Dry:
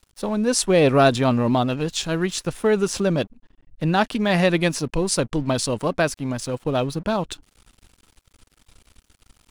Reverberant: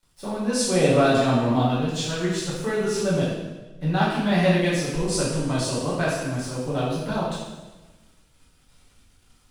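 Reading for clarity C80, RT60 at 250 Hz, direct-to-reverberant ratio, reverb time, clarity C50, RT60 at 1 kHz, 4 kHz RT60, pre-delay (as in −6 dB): 3.0 dB, 1.4 s, −9.0 dB, 1.2 s, 0.0 dB, 1.1 s, 1.1 s, 5 ms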